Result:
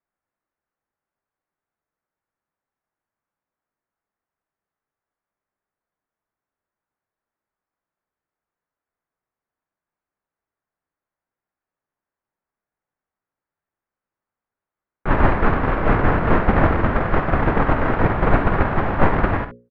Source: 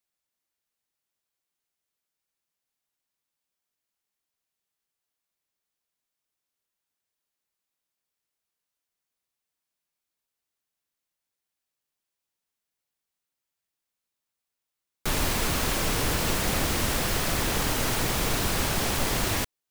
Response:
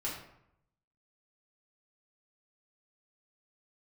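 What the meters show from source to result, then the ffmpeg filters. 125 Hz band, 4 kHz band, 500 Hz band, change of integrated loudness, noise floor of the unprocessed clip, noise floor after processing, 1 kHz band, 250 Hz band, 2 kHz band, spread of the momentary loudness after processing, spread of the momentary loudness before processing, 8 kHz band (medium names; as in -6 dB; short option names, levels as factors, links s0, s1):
+10.0 dB, -13.0 dB, +10.5 dB, +6.5 dB, under -85 dBFS, under -85 dBFS, +11.0 dB, +10.0 dB, +6.5 dB, 3 LU, 1 LU, under -35 dB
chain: -af "bandreject=f=60:t=h:w=6,bandreject=f=120:t=h:w=6,bandreject=f=180:t=h:w=6,bandreject=f=240:t=h:w=6,bandreject=f=300:t=h:w=6,bandreject=f=360:t=h:w=6,bandreject=f=420:t=h:w=6,bandreject=f=480:t=h:w=6,bandreject=f=540:t=h:w=6,apsyclip=10.6,lowpass=f=1700:w=0.5412,lowpass=f=1700:w=1.3066,agate=range=0.2:threshold=0.501:ratio=16:detection=peak,aecho=1:1:50|67:0.282|0.237"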